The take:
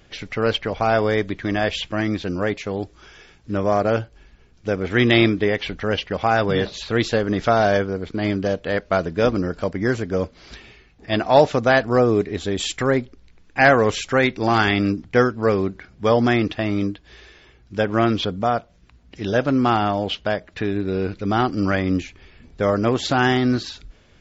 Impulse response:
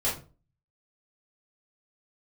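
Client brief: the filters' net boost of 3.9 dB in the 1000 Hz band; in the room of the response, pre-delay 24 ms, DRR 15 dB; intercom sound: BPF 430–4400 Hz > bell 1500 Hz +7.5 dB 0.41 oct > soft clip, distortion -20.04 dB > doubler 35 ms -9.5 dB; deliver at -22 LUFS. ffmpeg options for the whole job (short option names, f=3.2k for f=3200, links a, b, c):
-filter_complex "[0:a]equalizer=f=1k:t=o:g=4,asplit=2[a][b];[1:a]atrim=start_sample=2205,adelay=24[c];[b][c]afir=irnorm=-1:irlink=0,volume=-23.5dB[d];[a][d]amix=inputs=2:normalize=0,highpass=430,lowpass=4.4k,equalizer=f=1.5k:t=o:w=0.41:g=7.5,asoftclip=threshold=-3.5dB,asplit=2[e][f];[f]adelay=35,volume=-9.5dB[g];[e][g]amix=inputs=2:normalize=0,volume=-2dB"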